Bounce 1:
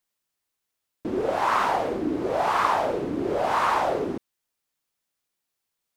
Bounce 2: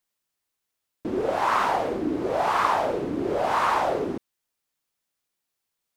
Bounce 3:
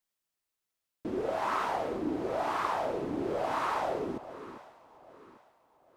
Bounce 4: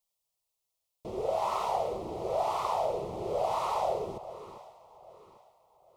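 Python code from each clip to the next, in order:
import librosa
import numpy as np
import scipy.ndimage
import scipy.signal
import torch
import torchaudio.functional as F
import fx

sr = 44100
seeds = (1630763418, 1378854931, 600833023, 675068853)

y1 = x
y2 = fx.rider(y1, sr, range_db=10, speed_s=0.5)
y2 = fx.comb_fb(y2, sr, f0_hz=650.0, decay_s=0.5, harmonics='all', damping=0.0, mix_pct=60)
y2 = fx.echo_alternate(y2, sr, ms=398, hz=840.0, feedback_pct=57, wet_db=-12.5)
y3 = fx.fixed_phaser(y2, sr, hz=670.0, stages=4)
y3 = y3 * 10.0 ** (3.5 / 20.0)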